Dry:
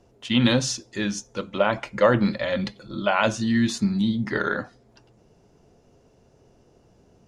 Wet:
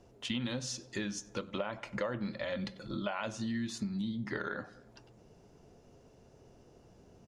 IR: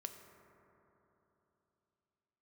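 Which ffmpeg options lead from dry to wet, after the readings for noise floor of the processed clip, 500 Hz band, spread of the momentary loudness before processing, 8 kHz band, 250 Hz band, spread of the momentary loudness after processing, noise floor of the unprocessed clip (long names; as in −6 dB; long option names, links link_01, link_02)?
−61 dBFS, −15.0 dB, 10 LU, −11.0 dB, −13.5 dB, 4 LU, −59 dBFS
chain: -filter_complex "[0:a]asplit=2[link_01][link_02];[link_02]adelay=95,lowpass=frequency=2600:poles=1,volume=-22dB,asplit=2[link_03][link_04];[link_04]adelay=95,lowpass=frequency=2600:poles=1,volume=0.46,asplit=2[link_05][link_06];[link_06]adelay=95,lowpass=frequency=2600:poles=1,volume=0.46[link_07];[link_01][link_03][link_05][link_07]amix=inputs=4:normalize=0,acompressor=threshold=-32dB:ratio=6,volume=-2dB"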